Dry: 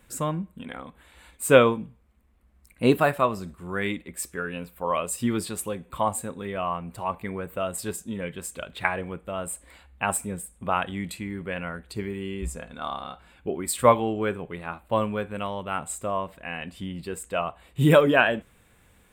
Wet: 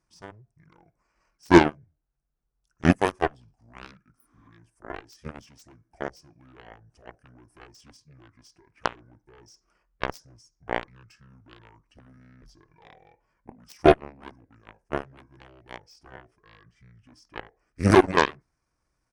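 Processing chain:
pitch shifter −7.5 semitones
harmonic generator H 7 −16 dB, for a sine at −3.5 dBFS
healed spectral selection 0:04.19–0:04.45, 220–9,200 Hz both
level +1.5 dB

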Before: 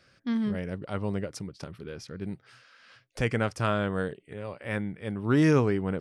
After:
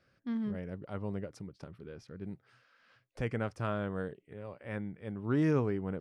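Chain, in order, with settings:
high-shelf EQ 2,400 Hz −10 dB
level −6.5 dB

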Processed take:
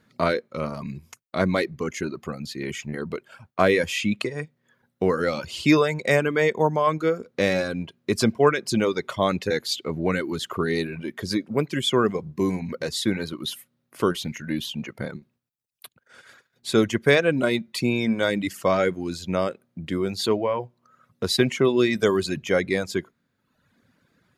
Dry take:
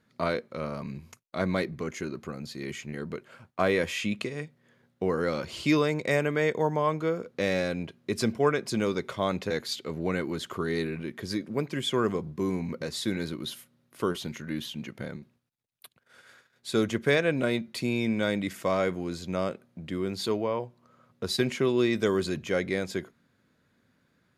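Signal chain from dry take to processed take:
reverb reduction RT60 0.91 s
level +6.5 dB

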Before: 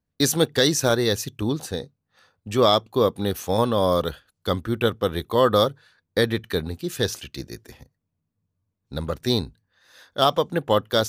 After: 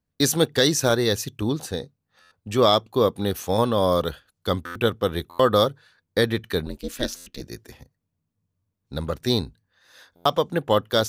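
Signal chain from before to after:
0:06.66–0:07.41: ring modulation 130 Hz
buffer that repeats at 0:02.21/0:04.65/0:05.29/0:07.16/0:10.15, samples 512

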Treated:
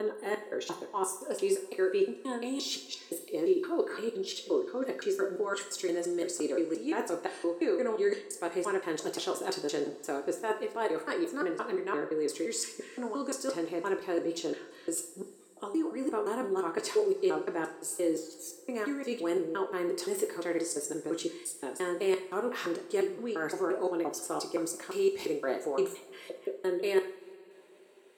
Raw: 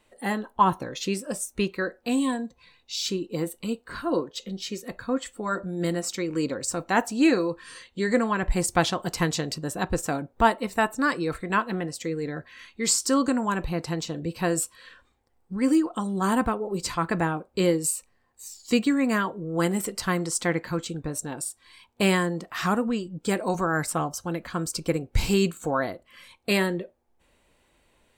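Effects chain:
slices reordered back to front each 173 ms, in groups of 3
reversed playback
downward compressor 6 to 1, threshold −32 dBFS, peak gain reduction 17 dB
reversed playback
high-pass with resonance 380 Hz, resonance Q 4.5
coupled-rooms reverb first 0.51 s, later 3.5 s, from −21 dB, DRR 4 dB
level −2 dB

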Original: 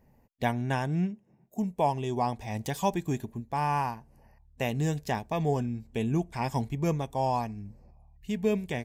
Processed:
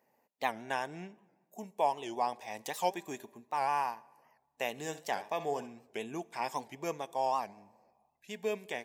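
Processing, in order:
high-pass filter 490 Hz 12 dB per octave
0:04.71–0:05.88: flutter between parallel walls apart 11.8 metres, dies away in 0.3 s
on a send at −23 dB: convolution reverb RT60 1.3 s, pre-delay 35 ms
on the sum: wow of a warped record 78 rpm, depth 160 cents
level −2 dB

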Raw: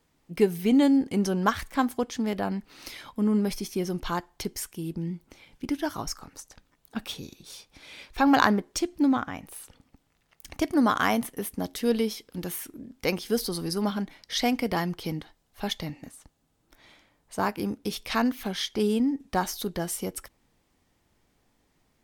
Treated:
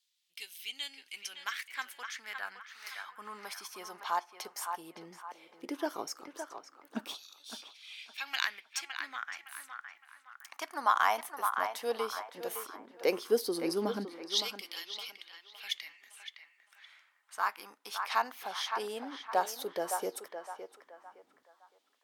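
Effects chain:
auto-filter high-pass saw down 0.14 Hz 270–3,800 Hz
feedback echo with a band-pass in the loop 563 ms, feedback 41%, band-pass 1,200 Hz, level −5 dB
level −6.5 dB

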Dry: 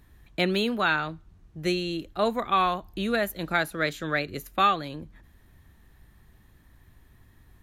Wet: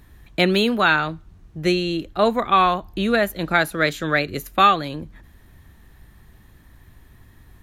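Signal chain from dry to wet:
0:01.58–0:03.61: high-shelf EQ 6,500 Hz −5.5 dB
level +7 dB

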